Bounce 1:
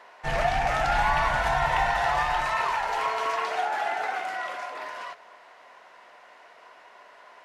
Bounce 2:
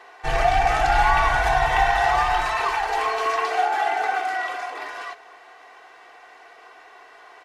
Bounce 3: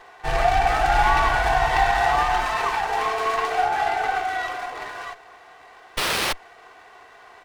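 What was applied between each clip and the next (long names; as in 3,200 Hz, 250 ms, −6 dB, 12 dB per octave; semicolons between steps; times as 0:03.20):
comb filter 2.6 ms, depth 81%; level +2.5 dB
sound drawn into the spectrogram noise, 0:05.97–0:06.33, 320–8,700 Hz −21 dBFS; windowed peak hold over 5 samples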